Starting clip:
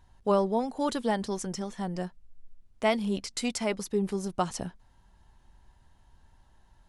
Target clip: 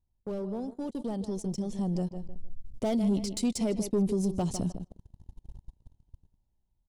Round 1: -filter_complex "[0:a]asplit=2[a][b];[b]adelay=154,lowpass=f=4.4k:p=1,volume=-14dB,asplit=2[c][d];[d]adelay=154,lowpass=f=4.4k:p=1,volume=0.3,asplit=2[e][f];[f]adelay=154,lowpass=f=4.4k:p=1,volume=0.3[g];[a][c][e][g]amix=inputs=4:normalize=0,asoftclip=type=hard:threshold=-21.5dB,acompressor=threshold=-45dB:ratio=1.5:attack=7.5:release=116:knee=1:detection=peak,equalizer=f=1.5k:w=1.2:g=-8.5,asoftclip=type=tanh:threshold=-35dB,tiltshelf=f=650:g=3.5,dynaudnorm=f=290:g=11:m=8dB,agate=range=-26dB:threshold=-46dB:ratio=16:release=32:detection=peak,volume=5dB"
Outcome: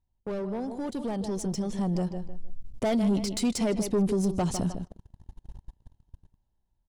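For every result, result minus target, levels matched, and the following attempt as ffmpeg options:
2000 Hz band +6.5 dB; compressor: peak gain reduction -3 dB
-filter_complex "[0:a]asplit=2[a][b];[b]adelay=154,lowpass=f=4.4k:p=1,volume=-14dB,asplit=2[c][d];[d]adelay=154,lowpass=f=4.4k:p=1,volume=0.3,asplit=2[e][f];[f]adelay=154,lowpass=f=4.4k:p=1,volume=0.3[g];[a][c][e][g]amix=inputs=4:normalize=0,asoftclip=type=hard:threshold=-21.5dB,acompressor=threshold=-45dB:ratio=1.5:attack=7.5:release=116:knee=1:detection=peak,equalizer=f=1.5k:w=1.2:g=-20,asoftclip=type=tanh:threshold=-35dB,tiltshelf=f=650:g=3.5,dynaudnorm=f=290:g=11:m=8dB,agate=range=-26dB:threshold=-46dB:ratio=16:release=32:detection=peak,volume=5dB"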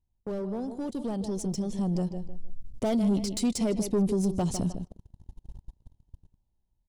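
compressor: peak gain reduction -3 dB
-filter_complex "[0:a]asplit=2[a][b];[b]adelay=154,lowpass=f=4.4k:p=1,volume=-14dB,asplit=2[c][d];[d]adelay=154,lowpass=f=4.4k:p=1,volume=0.3,asplit=2[e][f];[f]adelay=154,lowpass=f=4.4k:p=1,volume=0.3[g];[a][c][e][g]amix=inputs=4:normalize=0,asoftclip=type=hard:threshold=-21.5dB,acompressor=threshold=-53.5dB:ratio=1.5:attack=7.5:release=116:knee=1:detection=peak,equalizer=f=1.5k:w=1.2:g=-20,asoftclip=type=tanh:threshold=-35dB,tiltshelf=f=650:g=3.5,dynaudnorm=f=290:g=11:m=8dB,agate=range=-26dB:threshold=-46dB:ratio=16:release=32:detection=peak,volume=5dB"

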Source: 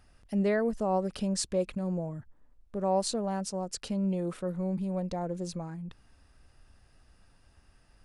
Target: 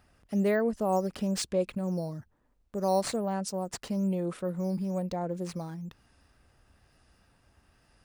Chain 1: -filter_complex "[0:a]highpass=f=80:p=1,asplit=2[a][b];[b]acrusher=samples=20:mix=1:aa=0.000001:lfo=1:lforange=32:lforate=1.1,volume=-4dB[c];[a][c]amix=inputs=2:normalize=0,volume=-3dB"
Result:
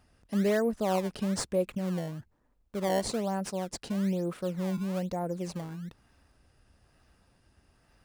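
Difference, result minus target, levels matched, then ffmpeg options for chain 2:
decimation with a swept rate: distortion +9 dB
-filter_complex "[0:a]highpass=f=80:p=1,asplit=2[a][b];[b]acrusher=samples=5:mix=1:aa=0.000001:lfo=1:lforange=8:lforate=1.1,volume=-4dB[c];[a][c]amix=inputs=2:normalize=0,volume=-3dB"

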